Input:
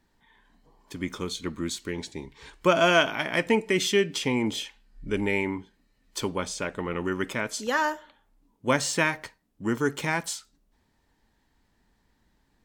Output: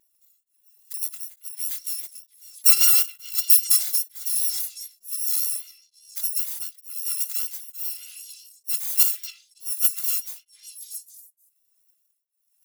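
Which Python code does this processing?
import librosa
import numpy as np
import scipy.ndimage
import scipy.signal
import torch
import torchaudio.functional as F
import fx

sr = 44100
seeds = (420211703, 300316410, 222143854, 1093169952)

p1 = fx.bit_reversed(x, sr, seeds[0], block=256)
p2 = fx.level_steps(p1, sr, step_db=22)
p3 = p1 + (p2 * 10.0 ** (0.0 / 20.0))
p4 = fx.riaa(p3, sr, side='recording')
p5 = p4 + fx.echo_stepped(p4, sr, ms=275, hz=2500.0, octaves=0.7, feedback_pct=70, wet_db=-5.0, dry=0)
p6 = fx.vibrato(p5, sr, rate_hz=5.0, depth_cents=39.0)
p7 = p6 * np.abs(np.cos(np.pi * 1.1 * np.arange(len(p6)) / sr))
y = p7 * 10.0 ** (-13.0 / 20.0)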